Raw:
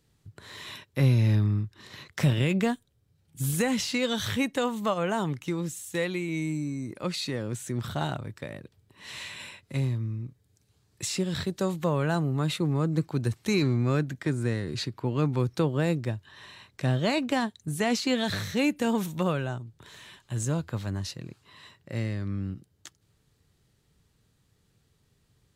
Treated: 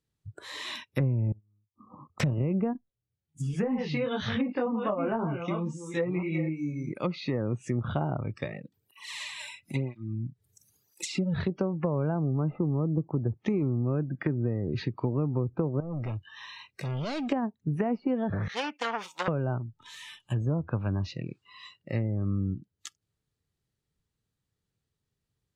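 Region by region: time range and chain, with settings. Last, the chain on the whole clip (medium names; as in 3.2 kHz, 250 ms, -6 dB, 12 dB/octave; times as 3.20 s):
1.32–2.20 s: inverted gate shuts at -30 dBFS, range -32 dB + brick-wall FIR low-pass 1.3 kHz + peaking EQ 87 Hz +7 dB 0.66 oct
2.73–6.92 s: chunks repeated in reverse 497 ms, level -8.5 dB + distance through air 58 m + detune thickener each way 19 cents
8.45–11.43 s: treble shelf 9.2 kHz +5 dB + upward compressor, threshold -42 dBFS + cancelling through-zero flanger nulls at 1 Hz, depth 4.2 ms
12.49–13.16 s: CVSD coder 64 kbps + low-pass 1.9 kHz
15.80–17.32 s: treble shelf 11 kHz -7 dB + compression 3:1, threshold -29 dBFS + overload inside the chain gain 34.5 dB
18.48–19.28 s: self-modulated delay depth 0.33 ms + gate -43 dBFS, range -10 dB + high-pass 760 Hz
whole clip: low-pass that closes with the level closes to 840 Hz, closed at -25.5 dBFS; spectral noise reduction 20 dB; compression 12:1, threshold -28 dBFS; trim +4.5 dB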